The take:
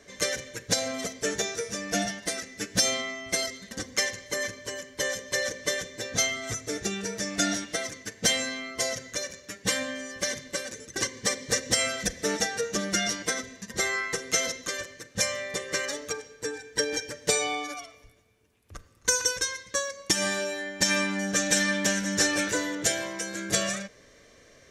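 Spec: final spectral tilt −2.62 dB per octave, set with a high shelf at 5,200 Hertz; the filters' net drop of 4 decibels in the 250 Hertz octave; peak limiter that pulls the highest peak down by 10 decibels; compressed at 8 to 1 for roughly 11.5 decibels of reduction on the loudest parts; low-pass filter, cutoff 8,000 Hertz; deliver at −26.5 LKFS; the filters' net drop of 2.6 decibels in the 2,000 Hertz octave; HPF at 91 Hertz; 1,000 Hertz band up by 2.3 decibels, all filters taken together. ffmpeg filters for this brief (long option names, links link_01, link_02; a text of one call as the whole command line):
ffmpeg -i in.wav -af "highpass=91,lowpass=8000,equalizer=frequency=250:width_type=o:gain=-5.5,equalizer=frequency=1000:width_type=o:gain=5,equalizer=frequency=2000:width_type=o:gain=-3.5,highshelf=frequency=5200:gain=-8,acompressor=threshold=-36dB:ratio=8,volume=15dB,alimiter=limit=-16dB:level=0:latency=1" out.wav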